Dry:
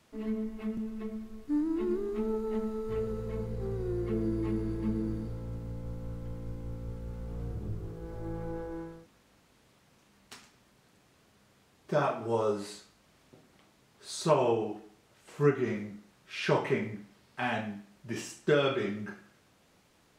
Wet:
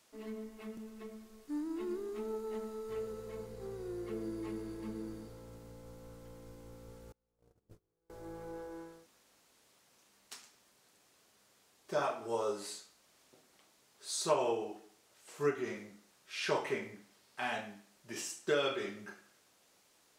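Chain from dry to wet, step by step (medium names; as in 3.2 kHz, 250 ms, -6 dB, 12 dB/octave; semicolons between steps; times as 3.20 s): 7.12–8.10 s: gate -32 dBFS, range -33 dB; tone controls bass -12 dB, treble +8 dB; trim -4.5 dB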